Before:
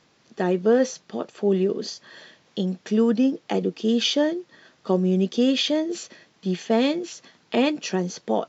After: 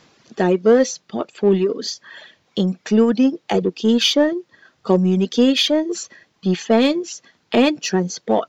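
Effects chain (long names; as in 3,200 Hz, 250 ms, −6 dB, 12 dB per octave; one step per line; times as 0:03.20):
reverb reduction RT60 1.6 s
in parallel at −6.5 dB: soft clipping −26.5 dBFS, distortion −6 dB
on the sum: level +5 dB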